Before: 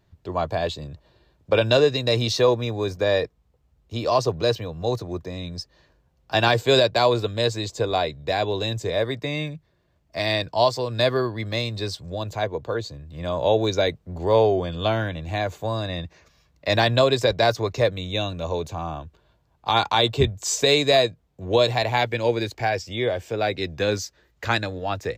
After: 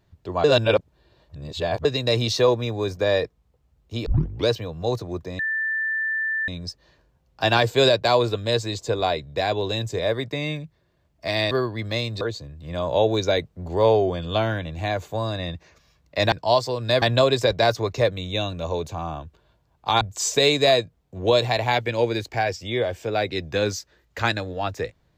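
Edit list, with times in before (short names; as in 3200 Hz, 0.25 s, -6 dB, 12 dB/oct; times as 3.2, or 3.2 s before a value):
0.44–1.85 reverse
4.06 tape start 0.42 s
5.39 add tone 1770 Hz -22 dBFS 1.09 s
10.42–11.12 move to 16.82
11.82–12.71 cut
19.81–20.27 cut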